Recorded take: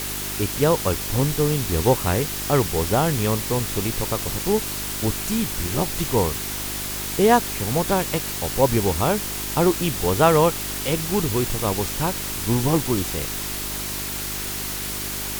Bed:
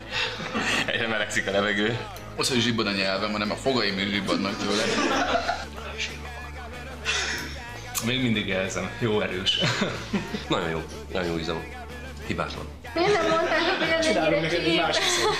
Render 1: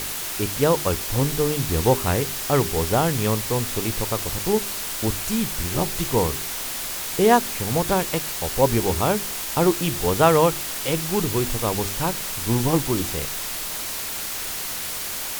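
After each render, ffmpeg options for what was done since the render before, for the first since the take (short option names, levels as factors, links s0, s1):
-af "bandreject=f=50:t=h:w=4,bandreject=f=100:t=h:w=4,bandreject=f=150:t=h:w=4,bandreject=f=200:t=h:w=4,bandreject=f=250:t=h:w=4,bandreject=f=300:t=h:w=4,bandreject=f=350:t=h:w=4,bandreject=f=400:t=h:w=4"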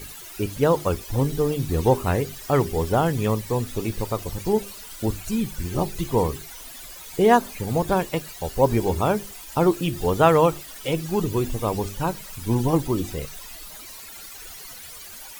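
-af "afftdn=nr=15:nf=-30"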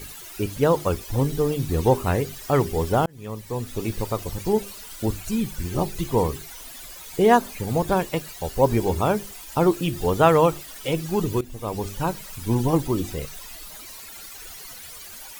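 -filter_complex "[0:a]asplit=3[s0][s1][s2];[s0]atrim=end=3.06,asetpts=PTS-STARTPTS,afade=t=out:st=3.056:d=0.004:c=hsin[s3];[s1]atrim=start=3.06:end=11.41,asetpts=PTS-STARTPTS,afade=t=in:d=0.84,afade=t=out:st=8.346:d=0.004:c=hsin:silence=0.141254[s4];[s2]atrim=start=11.41,asetpts=PTS-STARTPTS,afade=t=in:d=0.53:silence=0.141254[s5];[s3][s4][s5]concat=n=3:v=0:a=1"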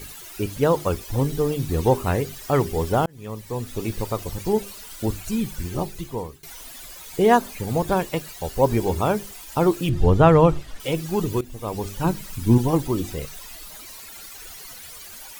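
-filter_complex "[0:a]asettb=1/sr,asplit=3[s0][s1][s2];[s0]atrim=end=9.894[s3];[s1]atrim=start=9.89:end=10.8,asetpts=PTS-STARTPTS,afade=t=in:d=0.004:c=qsin,afade=t=out:st=0.906:d=0.004:c=qsin,aemphasis=mode=reproduction:type=bsi[s4];[s2]atrim=start=10.796[s5];[s3][s4]acrossfade=d=0.004:c1=hsin:c2=qsin[s6];[s6][s5]acrossfade=d=0.004:c1=qsin:c2=hsin,asettb=1/sr,asplit=3[s7][s8][s9];[s7]atrim=end=12.044[s10];[s8]atrim=start=12.04:end=12.58,asetpts=PTS-STARTPTS,afade=t=in:d=0.004:c=qsin,afade=t=out:st=0.536:d=0.004:c=qsin,lowshelf=f=390:t=q:w=1.5:g=6[s11];[s9]atrim=start=12.576[s12];[s10][s11]acrossfade=d=0.004:c1=hsin:c2=qsin[s13];[s13][s12]acrossfade=d=0.004:c1=qsin:c2=hsin,asplit=2[s14][s15];[s14]atrim=end=6.43,asetpts=PTS-STARTPTS,afade=t=out:st=5.58:d=0.85:silence=0.1[s16];[s15]atrim=start=6.43,asetpts=PTS-STARTPTS,afade=t=in:d=0.004:c=hsin:silence=0.1[s17];[s16][s17]concat=n=2:v=0:a=1"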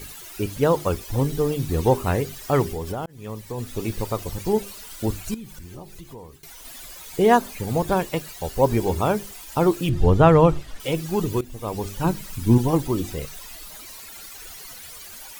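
-filter_complex "[0:a]asplit=3[s0][s1][s2];[s0]afade=t=out:st=2.7:d=0.02[s3];[s1]acompressor=threshold=0.0562:ratio=6:attack=3.2:release=140:knee=1:detection=peak,afade=t=in:st=2.7:d=0.02,afade=t=out:st=3.57:d=0.02[s4];[s2]afade=t=in:st=3.57:d=0.02[s5];[s3][s4][s5]amix=inputs=3:normalize=0,asettb=1/sr,asplit=3[s6][s7][s8];[s6]atrim=end=5.344[s9];[s7]atrim=start=5.34:end=6.65,asetpts=PTS-STARTPTS,afade=t=in:d=0.004:c=qsin,afade=t=out:st=1.306:d=0.004:c=qsin,acompressor=threshold=0.0112:ratio=3:attack=3.2:release=140:knee=1:detection=peak[s10];[s8]atrim=start=6.646[s11];[s9][s10]acrossfade=d=0.004:c1=hsin:c2=qsin[s12];[s12][s11]acrossfade=d=0.004:c1=qsin:c2=hsin"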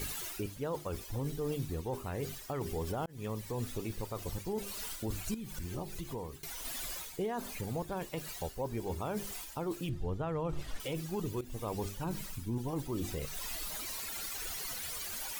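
-af "areverse,acompressor=threshold=0.0447:ratio=16,areverse,alimiter=level_in=1.33:limit=0.0631:level=0:latency=1:release=272,volume=0.75"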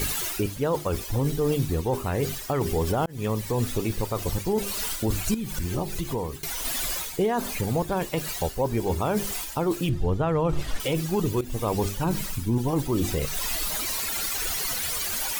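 -af "volume=3.76"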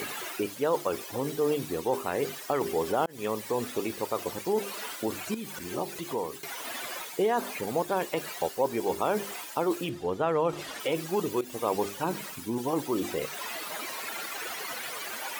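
-filter_complex "[0:a]highpass=320,acrossover=split=2800[s0][s1];[s1]acompressor=threshold=0.0112:ratio=4:attack=1:release=60[s2];[s0][s2]amix=inputs=2:normalize=0"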